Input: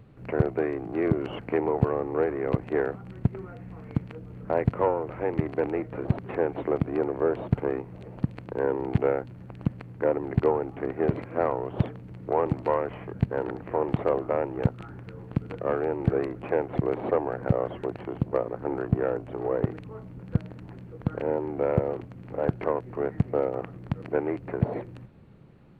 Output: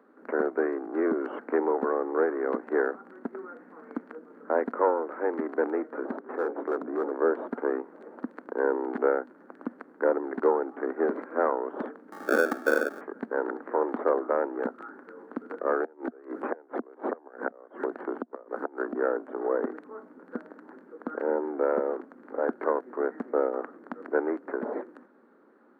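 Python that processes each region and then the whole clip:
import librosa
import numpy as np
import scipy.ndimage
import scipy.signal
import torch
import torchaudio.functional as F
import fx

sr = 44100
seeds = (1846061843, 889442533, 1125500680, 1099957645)

y = fx.chain(x, sr, fx.lowpass(hz=1400.0, slope=6),
    fx.hum_notches(base_hz=60, count=9),
    fx.clip_hard(threshold_db=-23.5), at=(6.16, 7.11))
y = fx.chain(y, sr, fx.peak_eq(hz=1300.0, db=4.5, octaves=1.2),
    fx.sample_hold(seeds[0], rate_hz=1000.0, jitter_pct=0),
    fx.band_squash(depth_pct=40), at=(12.12, 13.01))
y = fx.chain(y, sr, fx.gate_flip(shuts_db=-17.0, range_db=-26),
    fx.band_squash(depth_pct=100), at=(15.8, 18.95))
y = scipy.signal.sosfilt(scipy.signal.cheby1(5, 1.0, 240.0, 'highpass', fs=sr, output='sos'), y)
y = fx.high_shelf_res(y, sr, hz=2000.0, db=-9.5, q=3.0)
y = fx.notch(y, sr, hz=700.0, q=18.0)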